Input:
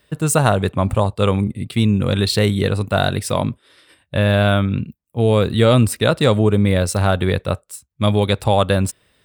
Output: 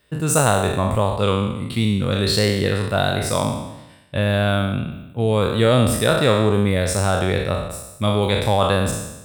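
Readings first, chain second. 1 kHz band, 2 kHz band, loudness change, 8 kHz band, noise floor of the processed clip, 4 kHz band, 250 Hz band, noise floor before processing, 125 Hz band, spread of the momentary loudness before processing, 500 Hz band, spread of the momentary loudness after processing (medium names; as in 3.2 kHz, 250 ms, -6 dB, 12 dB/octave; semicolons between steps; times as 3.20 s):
-0.5 dB, -0.5 dB, -2.0 dB, +1.5 dB, -43 dBFS, 0.0 dB, -2.5 dB, -65 dBFS, -3.0 dB, 9 LU, -1.5 dB, 8 LU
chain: spectral sustain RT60 0.97 s; trim -4 dB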